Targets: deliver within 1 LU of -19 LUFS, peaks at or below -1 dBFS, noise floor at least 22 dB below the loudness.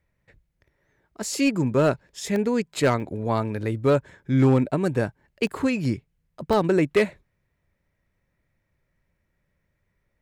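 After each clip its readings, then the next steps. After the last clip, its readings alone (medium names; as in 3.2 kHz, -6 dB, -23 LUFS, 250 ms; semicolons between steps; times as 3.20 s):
clipped samples 0.4%; clipping level -12.5 dBFS; dropouts 4; longest dropout 1.2 ms; loudness -24.0 LUFS; peak level -12.5 dBFS; loudness target -19.0 LUFS
-> clip repair -12.5 dBFS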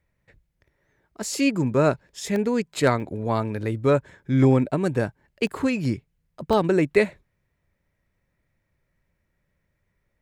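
clipped samples 0.0%; dropouts 4; longest dropout 1.2 ms
-> interpolate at 2.36/3.00/5.47/6.53 s, 1.2 ms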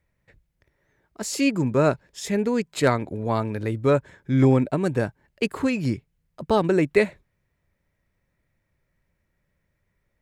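dropouts 0; loudness -23.5 LUFS; peak level -6.5 dBFS; loudness target -19.0 LUFS
-> trim +4.5 dB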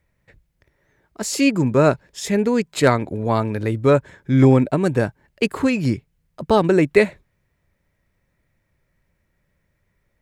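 loudness -19.0 LUFS; peak level -2.0 dBFS; noise floor -70 dBFS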